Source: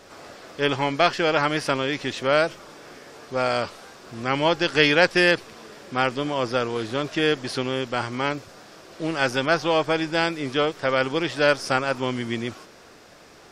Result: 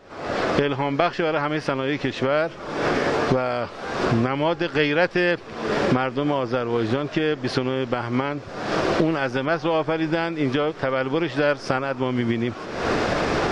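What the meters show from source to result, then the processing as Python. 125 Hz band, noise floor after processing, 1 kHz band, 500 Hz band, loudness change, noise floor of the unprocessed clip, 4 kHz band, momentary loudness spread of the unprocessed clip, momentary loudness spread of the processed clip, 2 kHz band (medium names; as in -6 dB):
+5.0 dB, -37 dBFS, +0.5 dB, +1.5 dB, 0.0 dB, -49 dBFS, -4.5 dB, 12 LU, 5 LU, -2.0 dB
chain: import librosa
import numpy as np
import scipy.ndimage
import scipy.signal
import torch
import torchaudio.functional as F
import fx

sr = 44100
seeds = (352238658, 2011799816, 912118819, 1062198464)

y = fx.recorder_agc(x, sr, target_db=-10.5, rise_db_per_s=60.0, max_gain_db=30)
y = fx.spacing_loss(y, sr, db_at_10k=22)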